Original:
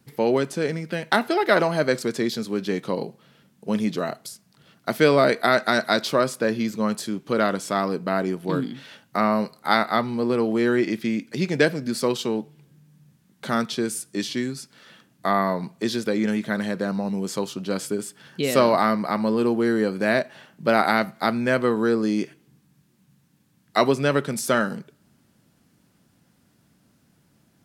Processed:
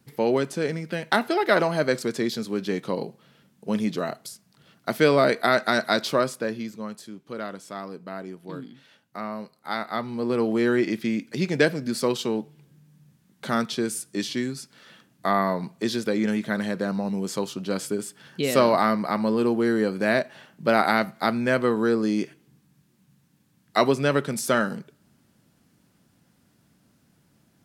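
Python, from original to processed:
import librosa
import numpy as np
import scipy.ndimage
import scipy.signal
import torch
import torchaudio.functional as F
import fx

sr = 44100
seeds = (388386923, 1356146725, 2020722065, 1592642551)

y = fx.gain(x, sr, db=fx.line((6.18, -1.5), (6.94, -12.0), (9.56, -12.0), (10.42, -1.0)))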